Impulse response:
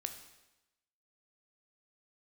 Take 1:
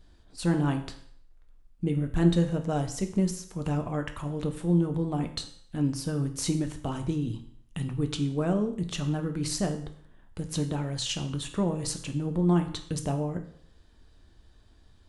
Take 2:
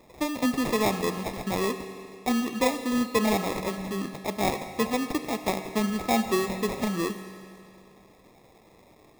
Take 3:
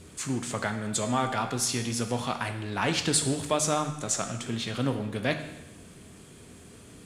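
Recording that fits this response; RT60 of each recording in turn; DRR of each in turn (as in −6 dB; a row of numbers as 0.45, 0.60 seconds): 3; 0.60, 2.4, 1.0 seconds; 6.0, 8.0, 6.5 decibels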